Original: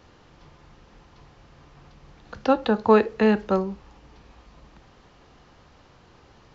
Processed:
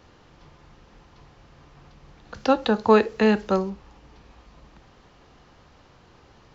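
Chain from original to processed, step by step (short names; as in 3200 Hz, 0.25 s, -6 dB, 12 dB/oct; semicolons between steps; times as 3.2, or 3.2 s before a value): 2.34–3.7 high shelf 4500 Hz +11 dB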